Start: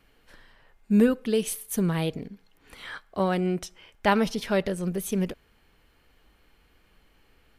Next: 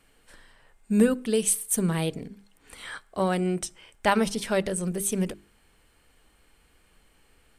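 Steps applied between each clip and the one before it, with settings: bell 8500 Hz +14 dB 0.48 oct; notches 50/100/150/200/250/300/350/400 Hz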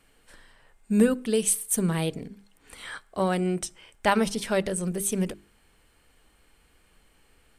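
nothing audible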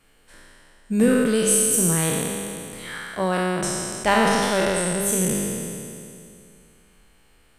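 spectral trails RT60 2.56 s

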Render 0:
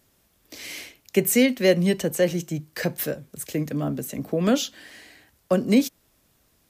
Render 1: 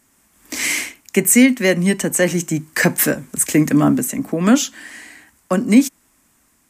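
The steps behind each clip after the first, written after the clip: ten-band EQ 125 Hz -4 dB, 250 Hz +9 dB, 500 Hz -5 dB, 1000 Hz +7 dB, 2000 Hz +7 dB, 4000 Hz -5 dB, 8000 Hz +12 dB; AGC gain up to 15.5 dB; gain -1 dB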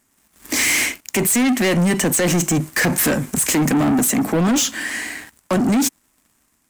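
limiter -13 dBFS, peak gain reduction 11.5 dB; sample leveller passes 3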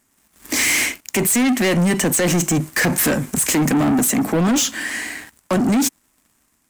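nothing audible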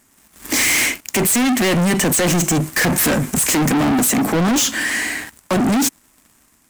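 soft clip -22 dBFS, distortion -13 dB; gain +7.5 dB

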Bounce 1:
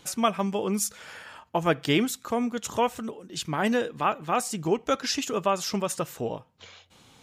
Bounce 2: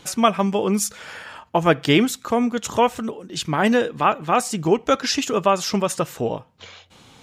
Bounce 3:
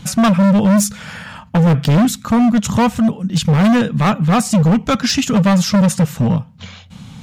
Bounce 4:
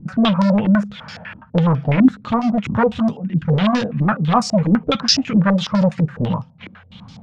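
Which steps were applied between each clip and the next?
high shelf 8200 Hz -6 dB; gain +7 dB
resonant low shelf 260 Hz +10.5 dB, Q 3; hard clip -14.5 dBFS, distortion -5 dB; gain +5 dB
flange 1.2 Hz, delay 4.9 ms, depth 6.4 ms, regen -44%; stepped low-pass 12 Hz 310–5100 Hz; gain -1.5 dB

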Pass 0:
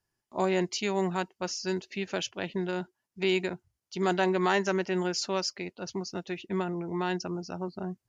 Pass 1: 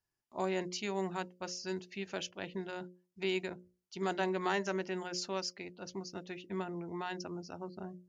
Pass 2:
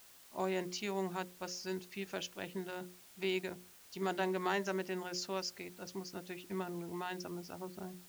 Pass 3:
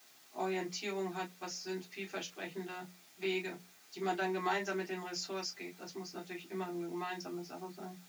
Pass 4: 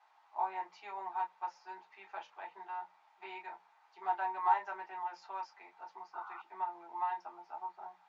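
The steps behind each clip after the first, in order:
notches 60/120/180/240/300/360/420/480/540/600 Hz; gain -7 dB
added noise white -58 dBFS; gain -1.5 dB
reverb, pre-delay 3 ms, DRR -3 dB; gain -5 dB
ladder band-pass 950 Hz, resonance 80%; painted sound noise, 6.13–6.42, 750–1500 Hz -57 dBFS; gain +9 dB

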